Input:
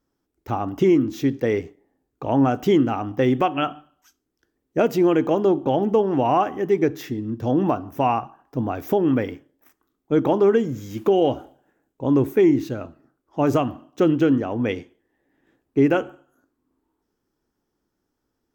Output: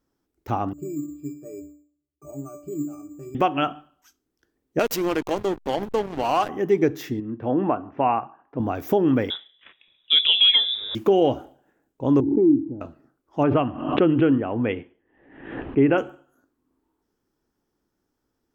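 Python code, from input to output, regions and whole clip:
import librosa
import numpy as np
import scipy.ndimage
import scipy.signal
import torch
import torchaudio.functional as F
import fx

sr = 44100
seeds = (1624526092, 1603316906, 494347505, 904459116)

y = fx.chain(x, sr, fx.peak_eq(hz=410.0, db=13.5, octaves=0.34),
    fx.octave_resonator(note='D', decay_s=0.43),
    fx.resample_bad(factor=6, down='filtered', up='hold'), at=(0.73, 3.35))
y = fx.chain(y, sr, fx.tilt_eq(slope=4.0),
    fx.backlash(play_db=-22.0), at=(4.79, 6.49))
y = fx.chain(y, sr, fx.lowpass(hz=2600.0, slope=24),
    fx.low_shelf(hz=140.0, db=-12.0), at=(7.2, 8.6))
y = fx.chain(y, sr, fx.high_shelf(hz=2800.0, db=6.5),
    fx.freq_invert(carrier_hz=3700),
    fx.band_squash(depth_pct=40), at=(9.3, 10.95))
y = fx.chain(y, sr, fx.formant_cascade(vowel='u'),
    fx.low_shelf(hz=170.0, db=9.0),
    fx.pre_swell(db_per_s=40.0), at=(12.2, 12.81))
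y = fx.chain(y, sr, fx.ellip_lowpass(hz=3000.0, order=4, stop_db=60),
    fx.pre_swell(db_per_s=74.0), at=(13.43, 15.98))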